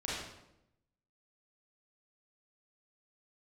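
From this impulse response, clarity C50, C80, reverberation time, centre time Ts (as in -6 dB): -1.5 dB, 2.5 dB, 0.85 s, 77 ms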